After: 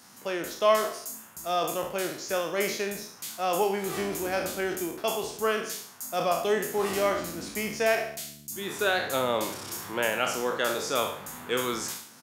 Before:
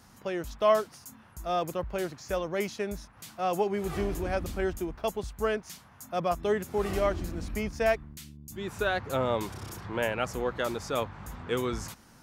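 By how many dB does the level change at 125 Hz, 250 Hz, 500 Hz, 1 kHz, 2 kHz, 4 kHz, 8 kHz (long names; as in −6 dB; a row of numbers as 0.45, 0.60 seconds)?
−6.0, 0.0, +1.5, +3.0, +5.0, +7.5, +10.5 decibels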